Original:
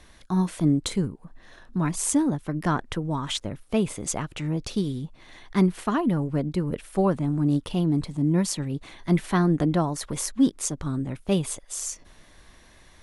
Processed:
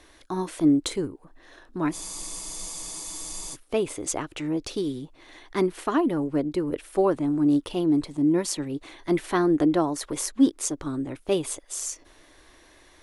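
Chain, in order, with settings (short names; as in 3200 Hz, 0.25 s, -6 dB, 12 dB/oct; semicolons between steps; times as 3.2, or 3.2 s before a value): resonant low shelf 250 Hz -6 dB, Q 3; spectral freeze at 1.95, 1.60 s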